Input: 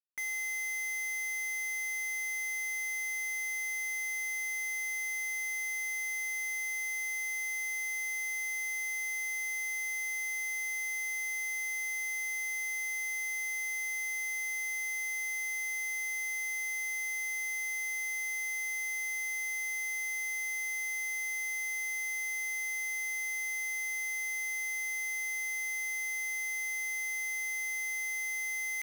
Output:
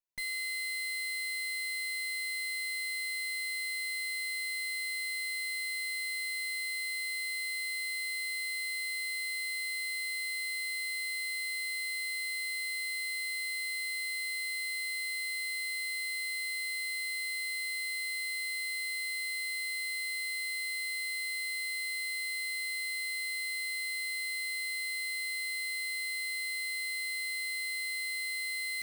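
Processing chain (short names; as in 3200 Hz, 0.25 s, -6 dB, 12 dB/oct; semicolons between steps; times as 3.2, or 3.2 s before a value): minimum comb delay 3 ms; Butterworth band-stop 1300 Hz, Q 4.9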